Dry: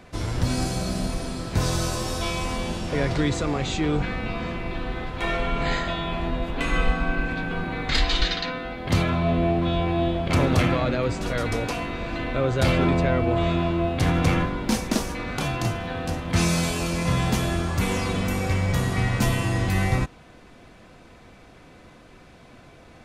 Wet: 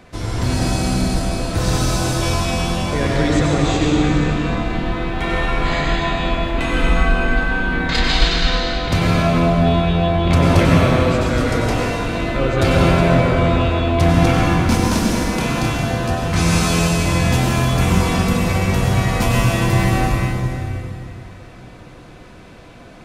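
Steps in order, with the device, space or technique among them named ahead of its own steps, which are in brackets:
stairwell (convolution reverb RT60 2.8 s, pre-delay 87 ms, DRR −3 dB)
level +2.5 dB

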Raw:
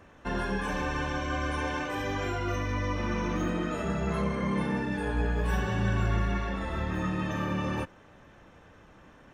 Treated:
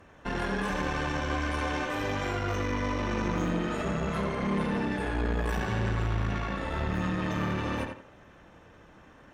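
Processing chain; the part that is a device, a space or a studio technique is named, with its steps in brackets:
rockabilly slapback (tube saturation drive 29 dB, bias 0.75; tape delay 83 ms, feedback 31%, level −4 dB, low-pass 3,700 Hz)
level +4 dB

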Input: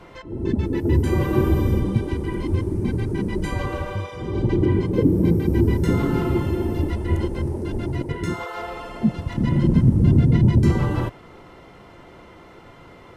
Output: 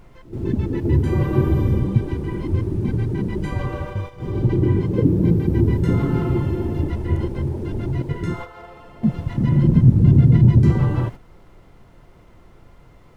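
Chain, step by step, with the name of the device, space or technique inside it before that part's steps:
car interior (parametric band 130 Hz +7 dB 0.81 octaves; high-shelf EQ 4,000 Hz −8 dB; brown noise bed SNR 20 dB)
noise gate −28 dBFS, range −8 dB
level −1.5 dB

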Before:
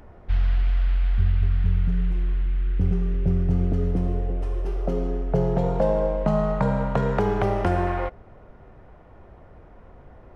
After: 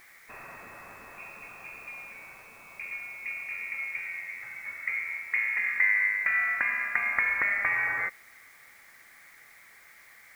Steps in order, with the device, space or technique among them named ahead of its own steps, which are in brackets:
scrambled radio voice (band-pass filter 370–2,800 Hz; voice inversion scrambler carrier 2,600 Hz; white noise bed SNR 28 dB)
level −1 dB

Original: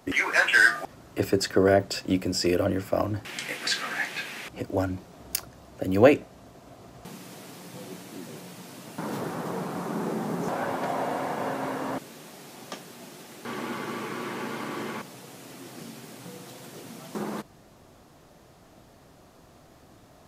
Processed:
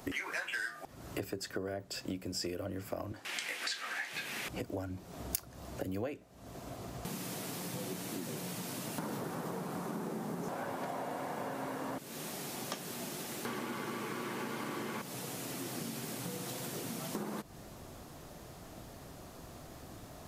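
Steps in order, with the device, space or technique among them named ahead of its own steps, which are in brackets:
0:03.12–0:04.13: meter weighting curve A
ASMR close-microphone chain (low-shelf EQ 120 Hz +4.5 dB; downward compressor 8 to 1, threshold −39 dBFS, peak gain reduction 27 dB; high-shelf EQ 7,900 Hz +7 dB)
level +2.5 dB

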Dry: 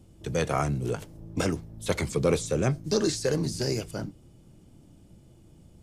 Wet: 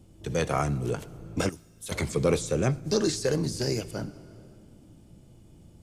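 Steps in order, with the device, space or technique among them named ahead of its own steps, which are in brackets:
compressed reverb return (on a send at −7 dB: convolution reverb RT60 1.6 s, pre-delay 49 ms + downward compressor 6 to 1, threshold −37 dBFS, peak gain reduction 16 dB)
0:01.49–0:01.92: on the sum: first-order pre-emphasis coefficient 0.8

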